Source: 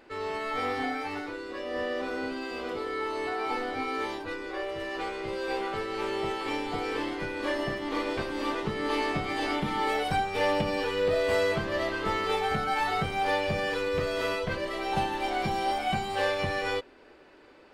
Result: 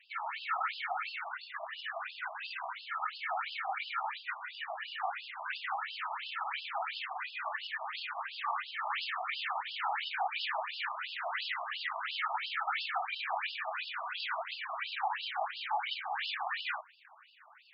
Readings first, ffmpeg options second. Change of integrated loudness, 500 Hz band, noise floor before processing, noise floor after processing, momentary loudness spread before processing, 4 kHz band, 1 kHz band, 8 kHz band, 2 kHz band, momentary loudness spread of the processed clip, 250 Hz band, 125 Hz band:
−6.5 dB, −18.5 dB, −54 dBFS, −58 dBFS, 7 LU, −2.5 dB, −5.0 dB, below −30 dB, −3.5 dB, 6 LU, below −40 dB, below −40 dB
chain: -filter_complex "[0:a]afftfilt=real='hypot(re,im)*cos(2*PI*random(0))':imag='hypot(re,im)*sin(2*PI*random(1))':win_size=512:overlap=0.75,asubboost=boost=3:cutoff=65,asplit=2[link_01][link_02];[link_02]aeval=exprs='0.112*sin(PI/2*5.01*val(0)/0.112)':channel_layout=same,volume=-9dB[link_03];[link_01][link_03]amix=inputs=2:normalize=0,afftfilt=real='re*between(b*sr/1024,870*pow(3800/870,0.5+0.5*sin(2*PI*2.9*pts/sr))/1.41,870*pow(3800/870,0.5+0.5*sin(2*PI*2.9*pts/sr))*1.41)':imag='im*between(b*sr/1024,870*pow(3800/870,0.5+0.5*sin(2*PI*2.9*pts/sr))/1.41,870*pow(3800/870,0.5+0.5*sin(2*PI*2.9*pts/sr))*1.41)':win_size=1024:overlap=0.75,volume=-1dB"

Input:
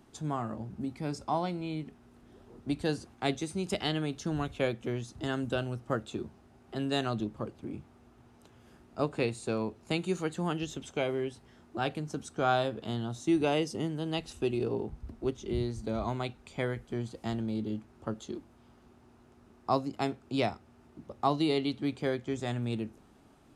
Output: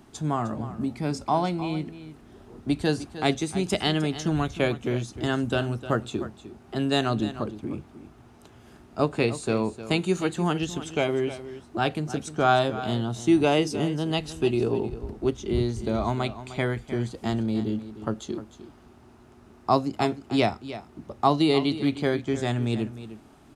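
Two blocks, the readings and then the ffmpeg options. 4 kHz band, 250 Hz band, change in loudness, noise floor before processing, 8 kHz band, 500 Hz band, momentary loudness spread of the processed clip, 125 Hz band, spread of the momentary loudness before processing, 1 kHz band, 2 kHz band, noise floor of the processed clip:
+7.0 dB, +7.0 dB, +7.0 dB, −60 dBFS, +7.0 dB, +6.5 dB, 13 LU, +7.0 dB, 11 LU, +7.0 dB, +7.0 dB, −53 dBFS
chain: -filter_complex "[0:a]bandreject=frequency=510:width=12,asplit=2[link_01][link_02];[link_02]aecho=0:1:306:0.211[link_03];[link_01][link_03]amix=inputs=2:normalize=0,volume=7dB"

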